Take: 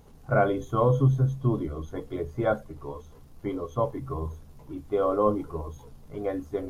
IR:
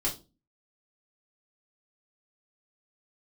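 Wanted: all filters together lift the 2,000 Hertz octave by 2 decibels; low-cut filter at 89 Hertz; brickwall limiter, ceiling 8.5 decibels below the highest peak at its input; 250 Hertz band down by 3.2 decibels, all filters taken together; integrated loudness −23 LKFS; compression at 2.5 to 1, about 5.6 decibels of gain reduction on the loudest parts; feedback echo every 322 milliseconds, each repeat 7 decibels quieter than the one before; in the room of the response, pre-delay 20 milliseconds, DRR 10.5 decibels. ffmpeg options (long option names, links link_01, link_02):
-filter_complex "[0:a]highpass=89,equalizer=frequency=250:width_type=o:gain=-4.5,equalizer=frequency=2000:width_type=o:gain=3.5,acompressor=threshold=-26dB:ratio=2.5,alimiter=limit=-24dB:level=0:latency=1,aecho=1:1:322|644|966|1288|1610:0.447|0.201|0.0905|0.0407|0.0183,asplit=2[link_01][link_02];[1:a]atrim=start_sample=2205,adelay=20[link_03];[link_02][link_03]afir=irnorm=-1:irlink=0,volume=-16.5dB[link_04];[link_01][link_04]amix=inputs=2:normalize=0,volume=11.5dB"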